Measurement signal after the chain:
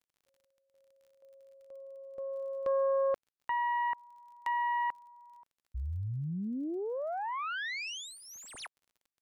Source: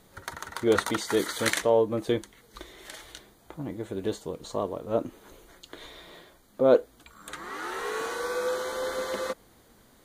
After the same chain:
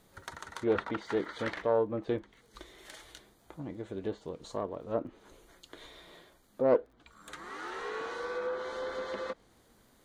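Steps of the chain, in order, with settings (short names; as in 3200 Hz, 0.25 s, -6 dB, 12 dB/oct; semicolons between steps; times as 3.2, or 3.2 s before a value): self-modulated delay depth 0.15 ms; treble ducked by the level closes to 2100 Hz, closed at -24.5 dBFS; crackle 39/s -50 dBFS; gain -5.5 dB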